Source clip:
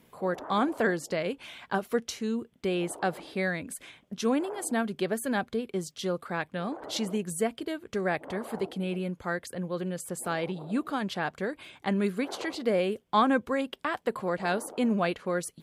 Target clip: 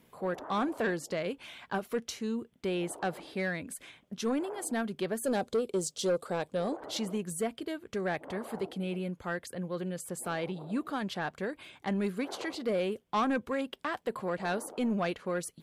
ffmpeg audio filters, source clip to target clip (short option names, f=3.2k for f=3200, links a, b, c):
-filter_complex "[0:a]asplit=3[a][b][c];[a]afade=t=out:st=5.23:d=0.02[d];[b]equalizer=f=500:t=o:w=1:g=10,equalizer=f=2k:t=o:w=1:g=-7,equalizer=f=4k:t=o:w=1:g=4,equalizer=f=8k:t=o:w=1:g=11,afade=t=in:st=5.23:d=0.02,afade=t=out:st=6.75:d=0.02[e];[c]afade=t=in:st=6.75:d=0.02[f];[d][e][f]amix=inputs=3:normalize=0,asoftclip=type=tanh:threshold=-20dB,volume=-2.5dB"